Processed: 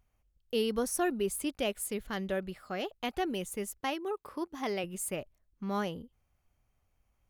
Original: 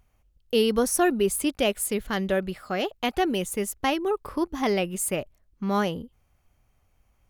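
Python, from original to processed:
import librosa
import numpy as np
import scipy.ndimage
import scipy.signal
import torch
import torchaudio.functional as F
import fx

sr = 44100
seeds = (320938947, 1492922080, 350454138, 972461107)

y = fx.highpass(x, sr, hz=230.0, slope=6, at=(3.8, 4.84))
y = y * librosa.db_to_amplitude(-8.5)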